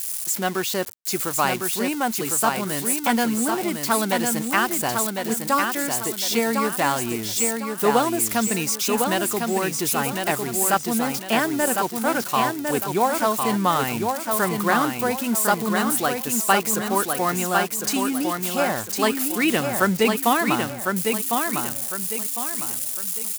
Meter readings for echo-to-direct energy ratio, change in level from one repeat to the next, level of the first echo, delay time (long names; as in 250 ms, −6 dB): −4.0 dB, −9.0 dB, −4.5 dB, 1,054 ms